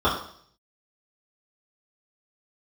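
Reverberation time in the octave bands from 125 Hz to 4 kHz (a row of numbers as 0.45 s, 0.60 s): 0.80 s, 0.60 s, 0.60 s, 0.55 s, 0.55 s, 0.65 s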